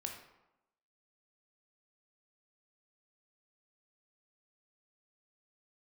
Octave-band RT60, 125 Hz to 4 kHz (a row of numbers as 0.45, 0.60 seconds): 0.80, 0.95, 0.90, 0.95, 0.75, 0.55 seconds